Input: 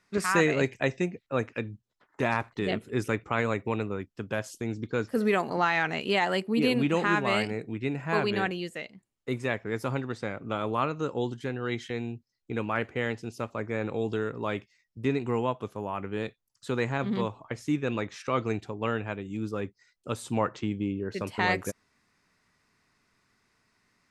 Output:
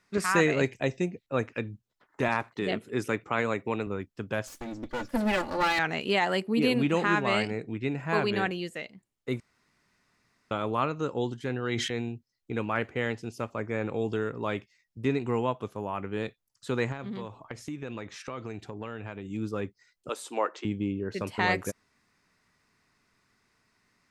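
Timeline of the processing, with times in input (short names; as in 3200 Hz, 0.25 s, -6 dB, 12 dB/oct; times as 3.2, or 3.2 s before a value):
0.73–1.34 bell 1500 Hz -6 dB 1.4 oct
2.28–3.87 Bessel high-pass 150 Hz
4.47–5.79 minimum comb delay 3.5 ms
7.03–7.98 LPF 8700 Hz 24 dB/oct
9.4–10.51 room tone
11.39–12.09 sustainer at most 27 dB/s
13.31–14.41 notch 3900 Hz
16.92–19.25 compressor, threshold -33 dBFS
20.09–20.65 HPF 340 Hz 24 dB/oct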